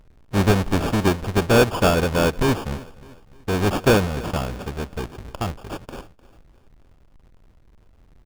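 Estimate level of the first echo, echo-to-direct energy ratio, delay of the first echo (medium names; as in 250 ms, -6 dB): -20.0 dB, -19.0 dB, 303 ms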